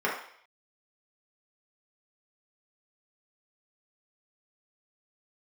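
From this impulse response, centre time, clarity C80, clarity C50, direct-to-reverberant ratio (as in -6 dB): 37 ms, 8.5 dB, 4.5 dB, -6.0 dB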